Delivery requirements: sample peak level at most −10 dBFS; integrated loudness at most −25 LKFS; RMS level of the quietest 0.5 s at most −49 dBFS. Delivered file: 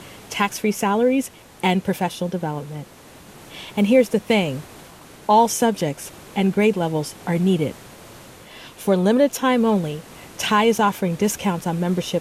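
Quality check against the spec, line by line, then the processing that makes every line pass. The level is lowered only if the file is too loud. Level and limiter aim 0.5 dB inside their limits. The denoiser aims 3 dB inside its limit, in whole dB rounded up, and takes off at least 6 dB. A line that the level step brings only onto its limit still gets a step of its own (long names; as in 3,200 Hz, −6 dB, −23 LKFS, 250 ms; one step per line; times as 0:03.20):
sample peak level −4.0 dBFS: out of spec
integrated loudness −20.5 LKFS: out of spec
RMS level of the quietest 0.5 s −45 dBFS: out of spec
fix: level −5 dB
brickwall limiter −10.5 dBFS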